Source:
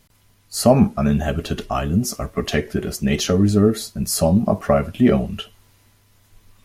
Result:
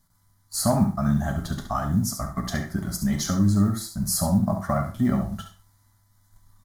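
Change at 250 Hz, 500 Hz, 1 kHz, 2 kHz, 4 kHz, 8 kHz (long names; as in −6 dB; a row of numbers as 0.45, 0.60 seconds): −5.0, −12.0, −4.0, −7.0, −7.0, −2.0 decibels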